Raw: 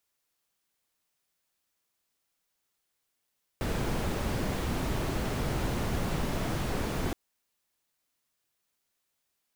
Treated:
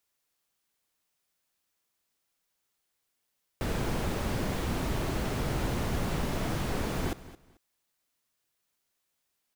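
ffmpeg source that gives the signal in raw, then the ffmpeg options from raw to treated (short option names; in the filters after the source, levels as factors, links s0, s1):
-f lavfi -i "anoisesrc=c=brown:a=0.148:d=3.52:r=44100:seed=1"
-af "aecho=1:1:220|440:0.141|0.0311"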